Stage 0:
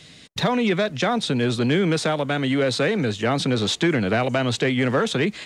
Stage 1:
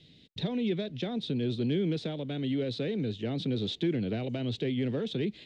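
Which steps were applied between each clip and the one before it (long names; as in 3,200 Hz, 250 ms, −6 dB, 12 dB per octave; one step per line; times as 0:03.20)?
drawn EQ curve 380 Hz 0 dB, 1,200 Hz −20 dB, 3,600 Hz −2 dB, 6,700 Hz −18 dB, 11,000 Hz −24 dB
level −8 dB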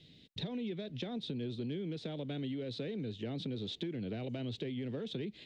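downward compressor, threshold −34 dBFS, peak gain reduction 9.5 dB
level −2 dB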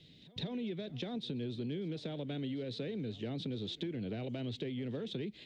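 echo ahead of the sound 159 ms −20.5 dB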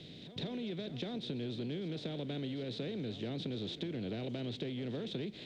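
compressor on every frequency bin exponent 0.6
level −3 dB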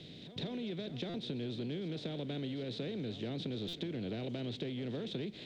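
buffer that repeats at 0:01.09/0:03.68, samples 256, times 8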